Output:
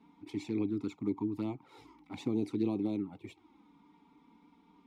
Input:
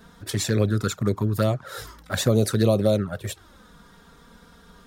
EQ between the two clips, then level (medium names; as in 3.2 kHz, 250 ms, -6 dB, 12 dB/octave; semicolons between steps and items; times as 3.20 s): dynamic bell 1.6 kHz, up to -5 dB, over -45 dBFS, Q 1.5; vowel filter u; +2.5 dB